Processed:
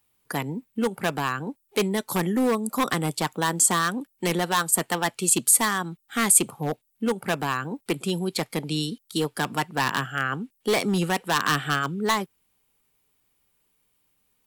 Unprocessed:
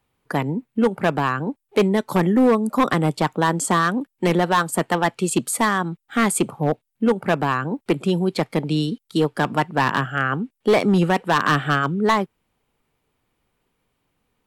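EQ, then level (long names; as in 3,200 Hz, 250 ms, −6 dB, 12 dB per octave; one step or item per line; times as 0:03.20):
first-order pre-emphasis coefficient 0.8
notch filter 600 Hz, Q 12
+7.0 dB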